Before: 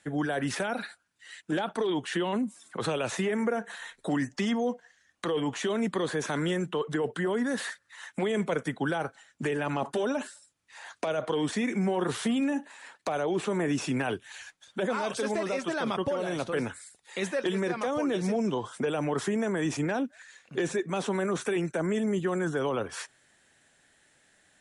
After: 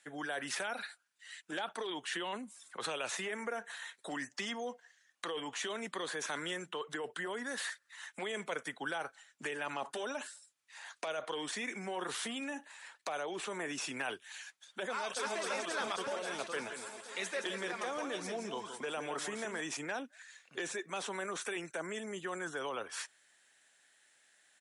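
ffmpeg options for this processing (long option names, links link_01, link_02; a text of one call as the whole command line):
ffmpeg -i in.wav -filter_complex "[0:a]asplit=2[link_01][link_02];[link_02]afade=type=in:start_time=14.89:duration=0.01,afade=type=out:start_time=15.38:duration=0.01,aecho=0:1:270|540|810|1080|1350|1620|1890|2160|2430|2700|2970|3240:0.707946|0.566357|0.453085|0.362468|0.289975|0.23198|0.185584|0.148467|0.118774|0.0950189|0.0760151|0.0608121[link_03];[link_01][link_03]amix=inputs=2:normalize=0,asettb=1/sr,asplit=3[link_04][link_05][link_06];[link_04]atrim=end=16.554[link_07];[link_05]atrim=start=16.55:end=19.61,asetpts=PTS-STARTPTS,afade=type=in:duration=0.004:curve=qsin,afade=type=out:start_time=3.056:duration=0.004:curve=qsin,aecho=1:1:168|336|504:0.376|0.109|0.0316,atrim=end_sample=134946[link_08];[link_06]atrim=start=19.606[link_09];[link_07][link_08]acrossfade=duration=0.004:curve1=hsin:curve2=qsin[link_10];[link_10][link_09]acrossfade=duration=0.004:curve1=qsin:curve2=hsin,highpass=frequency=1300:poles=1,volume=-2dB" out.wav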